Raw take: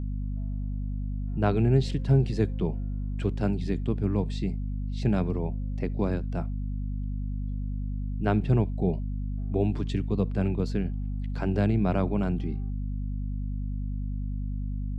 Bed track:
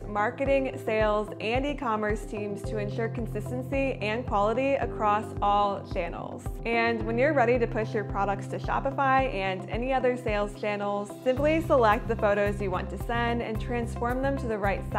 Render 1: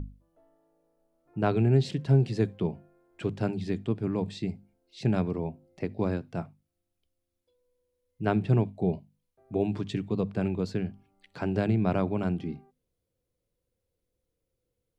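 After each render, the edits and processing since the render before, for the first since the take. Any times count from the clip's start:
mains-hum notches 50/100/150/200/250 Hz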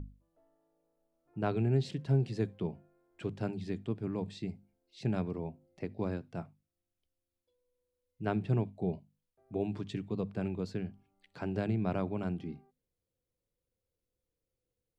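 level −6.5 dB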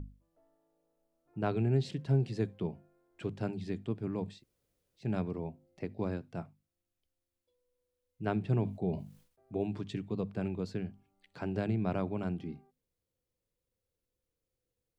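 0:04.36–0:05.04: fill with room tone, crossfade 0.16 s
0:08.53–0:09.57: level that may fall only so fast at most 110 dB per second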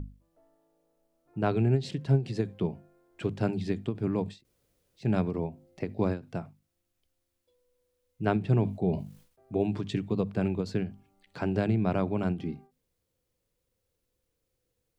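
in parallel at +1 dB: speech leveller within 3 dB
on the sum: every ending faded ahead of time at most 200 dB per second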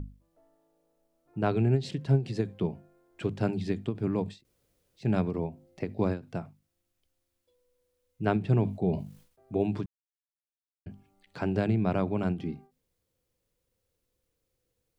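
0:09.86–0:10.86: silence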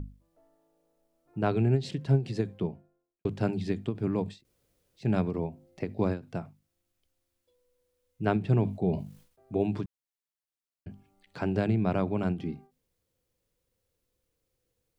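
0:02.43–0:03.25: fade out and dull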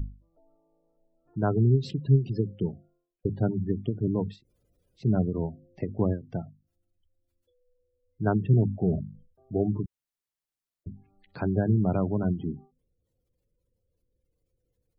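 gate on every frequency bin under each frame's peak −20 dB strong
low-shelf EQ 130 Hz +8 dB

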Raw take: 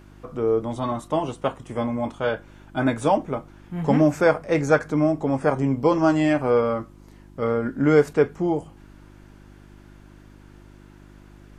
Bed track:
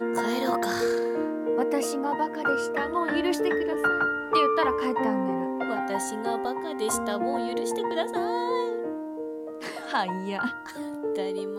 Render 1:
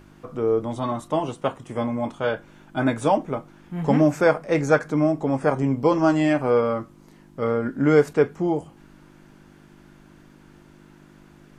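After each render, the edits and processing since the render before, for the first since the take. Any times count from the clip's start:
hum removal 50 Hz, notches 2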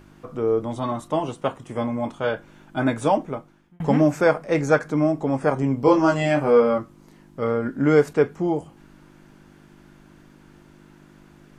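0:03.19–0:03.80: fade out
0:05.85–0:06.78: double-tracking delay 21 ms −2 dB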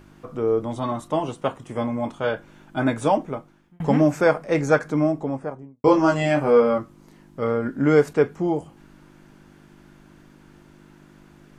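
0:04.94–0:05.84: fade out and dull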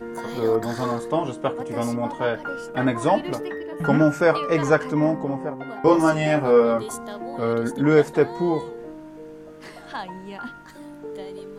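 mix in bed track −6 dB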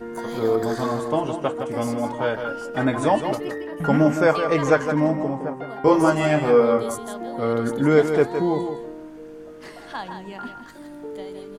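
single-tap delay 163 ms −8 dB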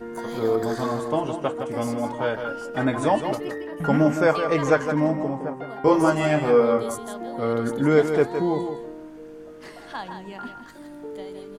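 level −1.5 dB

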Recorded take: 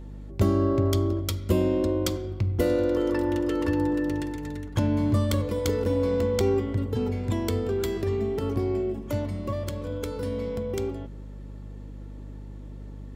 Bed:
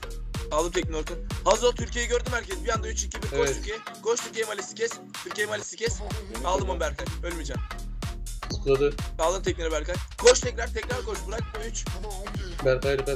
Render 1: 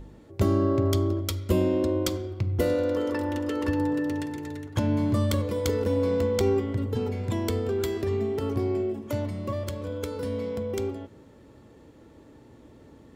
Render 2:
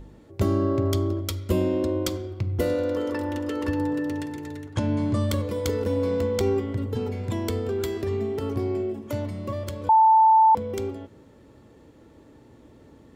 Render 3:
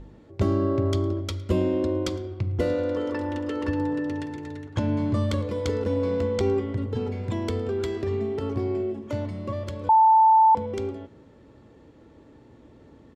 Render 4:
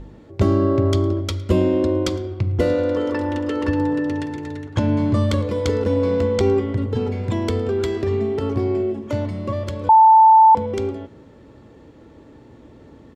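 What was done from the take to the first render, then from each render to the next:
hum removal 50 Hz, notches 7
0:04.73–0:05.29: Butterworth low-pass 10,000 Hz 72 dB per octave; 0:09.89–0:10.55: beep over 884 Hz −12.5 dBFS
high-frequency loss of the air 72 metres; single-tap delay 110 ms −23.5 dB
level +6 dB

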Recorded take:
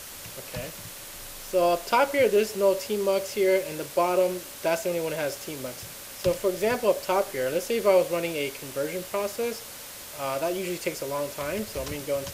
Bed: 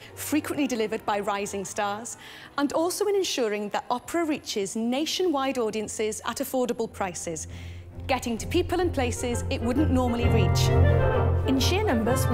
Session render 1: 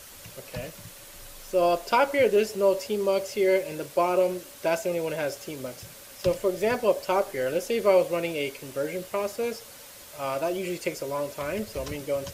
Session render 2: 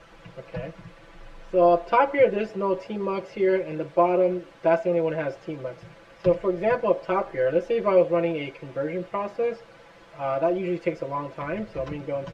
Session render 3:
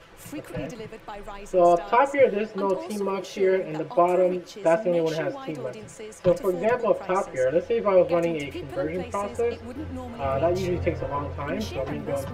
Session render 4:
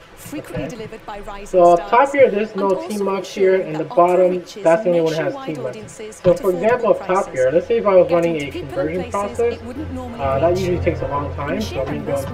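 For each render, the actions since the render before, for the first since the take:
broadband denoise 6 dB, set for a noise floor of −41 dBFS
low-pass filter 1,900 Hz 12 dB per octave; comb filter 6 ms, depth 97%
mix in bed −12 dB
level +7 dB; brickwall limiter −2 dBFS, peak gain reduction 1 dB

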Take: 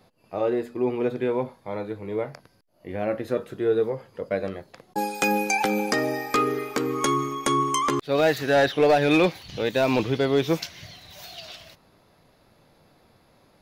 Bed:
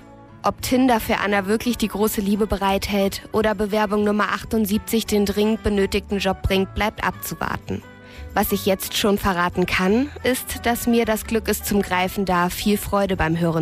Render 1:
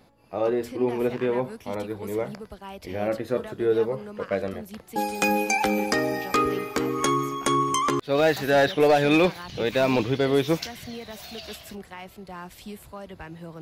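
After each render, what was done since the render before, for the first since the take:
mix in bed −20 dB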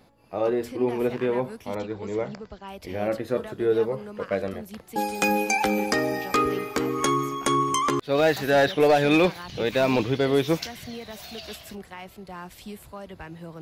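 0:01.75–0:02.68: linear-phase brick-wall low-pass 7,700 Hz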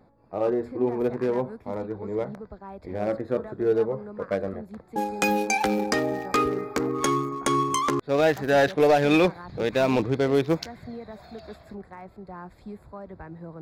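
adaptive Wiener filter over 15 samples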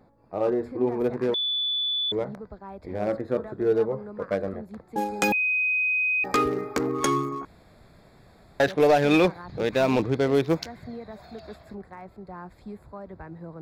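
0:01.34–0:02.12: beep over 3,470 Hz −23.5 dBFS
0:05.32–0:06.24: beep over 2,510 Hz −21 dBFS
0:07.45–0:08.60: fill with room tone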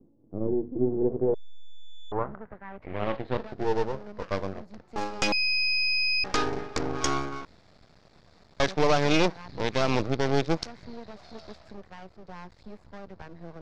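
half-wave rectification
low-pass filter sweep 320 Hz → 5,500 Hz, 0:00.90–0:03.64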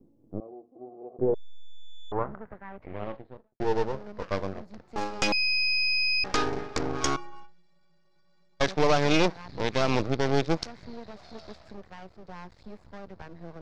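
0:00.40–0:01.19: formant filter a
0:02.53–0:03.60: fade out and dull
0:07.16–0:08.61: stiff-string resonator 170 Hz, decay 0.42 s, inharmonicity 0.03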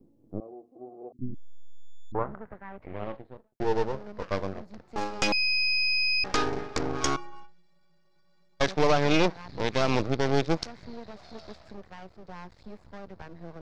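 0:01.12–0:02.15: Chebyshev band-stop filter 290–4,100 Hz, order 5
0:08.91–0:09.36: low-pass filter 4,500 Hz → 7,700 Hz 6 dB per octave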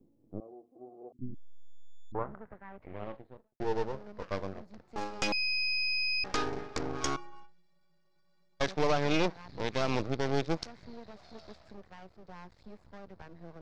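level −5.5 dB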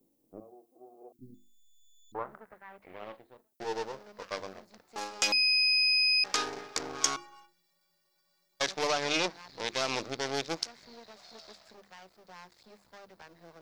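RIAA equalisation recording
mains-hum notches 50/100/150/200/250/300/350 Hz

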